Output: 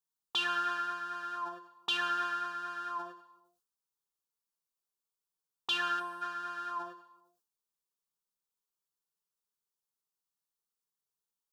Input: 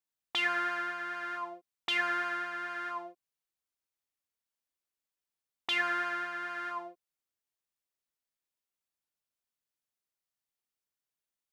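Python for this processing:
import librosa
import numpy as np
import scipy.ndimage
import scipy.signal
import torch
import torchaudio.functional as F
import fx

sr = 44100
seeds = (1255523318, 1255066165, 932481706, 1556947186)

y = fx.dynamic_eq(x, sr, hz=2600.0, q=0.75, threshold_db=-44.0, ratio=4.0, max_db=8)
y = fx.fixed_phaser(y, sr, hz=420.0, stages=8)
y = fx.rev_gated(y, sr, seeds[0], gate_ms=470, shape='falling', drr_db=11.5)
y = fx.spec_box(y, sr, start_s=6.0, length_s=0.22, low_hz=1100.0, high_hz=8000.0, gain_db=-13)
y = fx.sustainer(y, sr, db_per_s=100.0)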